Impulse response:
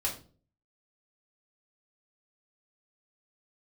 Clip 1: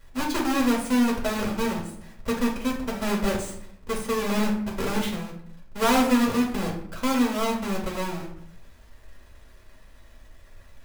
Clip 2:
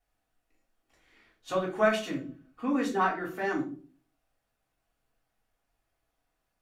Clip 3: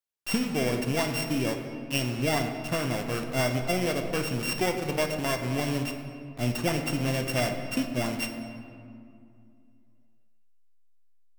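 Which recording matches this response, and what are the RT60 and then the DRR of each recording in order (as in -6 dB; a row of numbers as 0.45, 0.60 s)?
2; 0.70, 0.40, 2.4 s; -4.0, -4.5, 4.0 dB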